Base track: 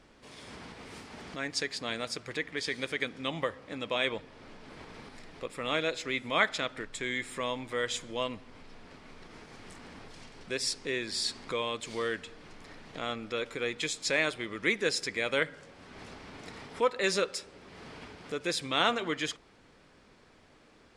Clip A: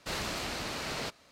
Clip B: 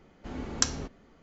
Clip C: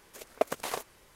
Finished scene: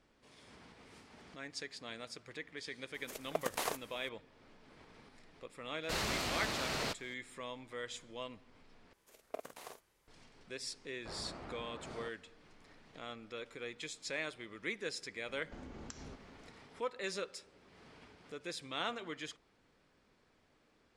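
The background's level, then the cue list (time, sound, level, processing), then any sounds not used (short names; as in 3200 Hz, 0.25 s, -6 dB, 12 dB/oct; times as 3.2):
base track -11.5 dB
2.94 add C -0.5 dB + limiter -19.5 dBFS
5.83 add A -1 dB
8.93 replace with C -16.5 dB + early reflections 28 ms -15 dB, 48 ms -5.5 dB
10.99 add A -9 dB + LPF 1200 Hz
15.28 add B -0.5 dB + compressor, threshold -46 dBFS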